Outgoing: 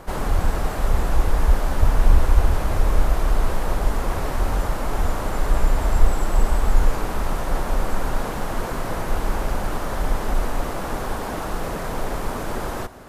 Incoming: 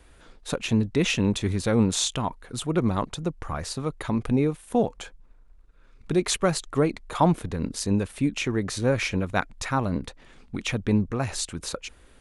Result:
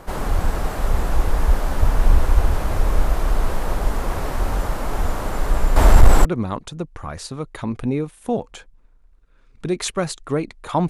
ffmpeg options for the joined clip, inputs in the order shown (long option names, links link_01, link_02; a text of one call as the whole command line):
ffmpeg -i cue0.wav -i cue1.wav -filter_complex "[0:a]asettb=1/sr,asplit=3[link_01][link_02][link_03];[link_01]atrim=end=5.764[link_04];[link_02]atrim=start=5.76:end=6.25,asetpts=PTS-STARTPTS,afade=type=in:duration=0.004:curve=qsin,afade=type=out:start_time=0.486:duration=0.004:curve=qsin,aeval=exprs='0.841*sin(PI/2*2*val(0)/0.841)':channel_layout=same[link_05];[link_03]atrim=start=6.246[link_06];[link_04][link_05]acrossfade=duration=0.004:curve1=hsin:curve2=qsin[link_07];[link_07][link_06]acrossfade=duration=0.004:curve1=qsin:curve2=hsin,apad=whole_dur=10.89,atrim=end=10.89,atrim=end=6.252[link_08];[1:a]atrim=start=2.708:end=7.35[link_09];[link_08][link_09]acrossfade=duration=0.004:curve1=hsin:curve2=hsin" out.wav